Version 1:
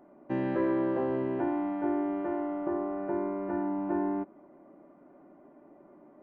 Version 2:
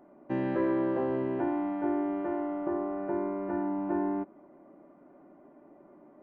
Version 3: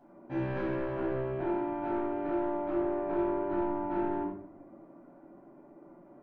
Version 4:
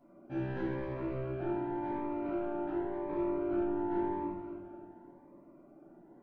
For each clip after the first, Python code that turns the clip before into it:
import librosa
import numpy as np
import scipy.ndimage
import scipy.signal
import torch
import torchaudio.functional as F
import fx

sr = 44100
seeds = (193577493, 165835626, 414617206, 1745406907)

y1 = x
y2 = fx.rider(y1, sr, range_db=3, speed_s=2.0)
y2 = 10.0 ** (-29.0 / 20.0) * np.tanh(y2 / 10.0 ** (-29.0 / 20.0))
y2 = fx.room_shoebox(y2, sr, seeds[0], volume_m3=970.0, walls='furnished', distance_m=8.1)
y2 = y2 * librosa.db_to_amplitude(-8.5)
y3 = fx.echo_feedback(y2, sr, ms=263, feedback_pct=46, wet_db=-8.5)
y3 = fx.notch_cascade(y3, sr, direction='rising', hz=0.91)
y3 = y3 * librosa.db_to_amplitude(-2.5)